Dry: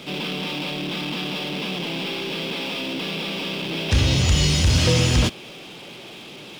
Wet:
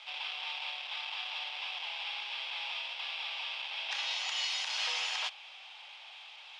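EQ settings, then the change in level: elliptic high-pass 810 Hz, stop band 70 dB; low-pass 3.2 kHz 12 dB/octave; peaking EQ 1.4 kHz -9 dB 2.1 oct; -1.0 dB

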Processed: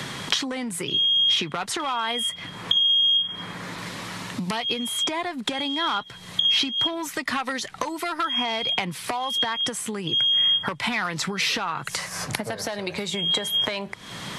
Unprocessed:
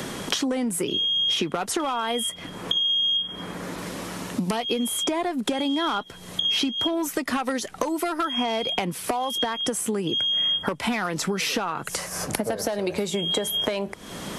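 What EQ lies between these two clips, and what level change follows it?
graphic EQ 125/1000/2000/4000/8000 Hz +12/+7/+9/+10/+4 dB; -8.0 dB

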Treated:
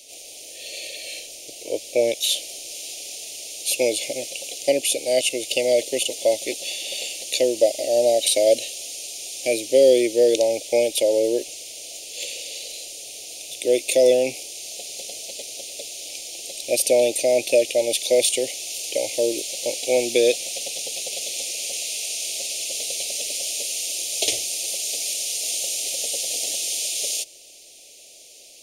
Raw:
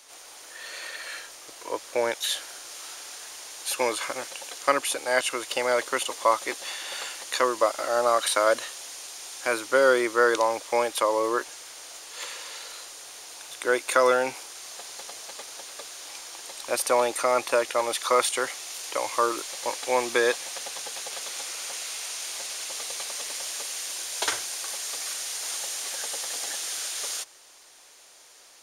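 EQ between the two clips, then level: elliptic band-stop 640–2500 Hz, stop band 60 dB; +7.0 dB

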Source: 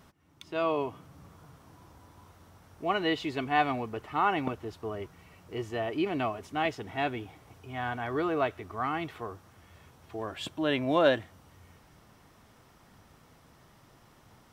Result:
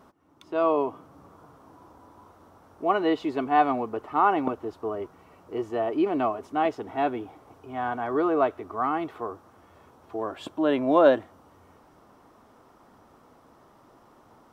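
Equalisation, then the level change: high-order bell 560 Hz +11 dB 2.9 oct; -5.0 dB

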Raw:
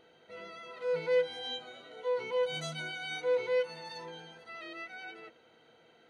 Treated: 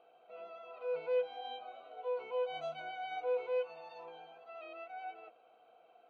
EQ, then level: vowel filter a; treble shelf 4.6 kHz -9.5 dB; +9.0 dB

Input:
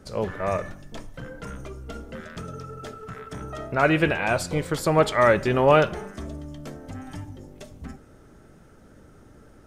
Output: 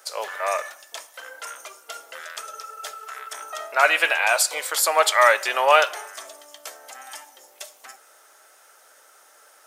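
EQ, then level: high-pass 650 Hz 24 dB/octave; treble shelf 2.5 kHz +7.5 dB; treble shelf 10 kHz +10 dB; +3.5 dB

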